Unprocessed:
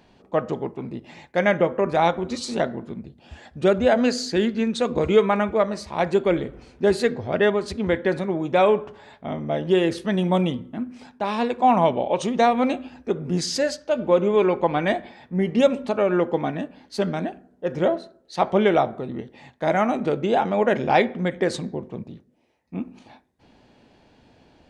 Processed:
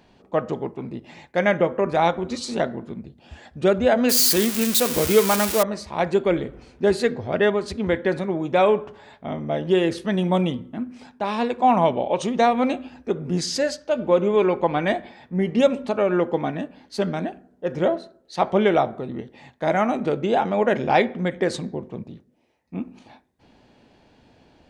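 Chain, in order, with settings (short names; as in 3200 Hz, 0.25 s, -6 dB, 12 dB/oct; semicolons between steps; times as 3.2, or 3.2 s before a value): 4.09–5.63 switching spikes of -10.5 dBFS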